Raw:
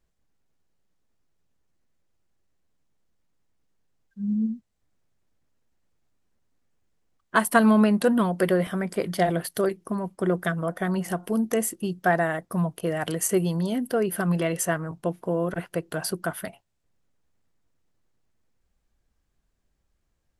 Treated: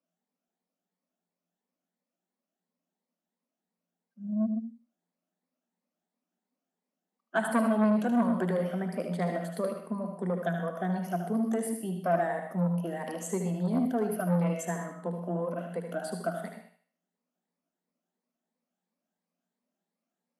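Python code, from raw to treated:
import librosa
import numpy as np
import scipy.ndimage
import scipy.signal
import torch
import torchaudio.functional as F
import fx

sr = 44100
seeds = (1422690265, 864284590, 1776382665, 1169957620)

p1 = fx.spec_ripple(x, sr, per_octave=0.92, drift_hz=2.9, depth_db=13)
p2 = scipy.signal.sosfilt(scipy.signal.cheby1(6, 9, 170.0, 'highpass', fs=sr, output='sos'), p1)
p3 = fx.low_shelf(p2, sr, hz=320.0, db=8.5)
p4 = p3 + fx.echo_thinned(p3, sr, ms=76, feedback_pct=38, hz=420.0, wet_db=-5.5, dry=0)
p5 = fx.rev_gated(p4, sr, seeds[0], gate_ms=150, shape='rising', drr_db=7.0)
p6 = fx.transformer_sat(p5, sr, knee_hz=580.0)
y = p6 * librosa.db_to_amplitude(-6.5)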